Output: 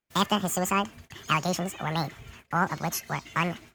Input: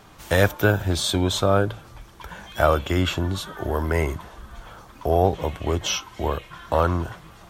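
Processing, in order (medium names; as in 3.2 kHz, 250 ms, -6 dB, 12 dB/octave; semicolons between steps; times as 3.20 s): speed mistake 7.5 ips tape played at 15 ips; gate -42 dBFS, range -35 dB; trim -5.5 dB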